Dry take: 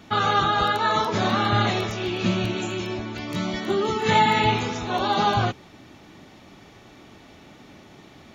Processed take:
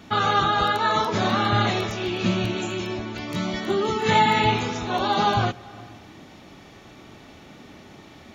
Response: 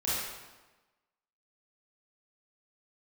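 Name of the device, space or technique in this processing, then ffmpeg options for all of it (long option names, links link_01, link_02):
ducked reverb: -filter_complex "[0:a]asplit=3[link_01][link_02][link_03];[1:a]atrim=start_sample=2205[link_04];[link_02][link_04]afir=irnorm=-1:irlink=0[link_05];[link_03]apad=whole_len=367938[link_06];[link_05][link_06]sidechaincompress=threshold=-43dB:ratio=4:attack=16:release=205,volume=-13.5dB[link_07];[link_01][link_07]amix=inputs=2:normalize=0"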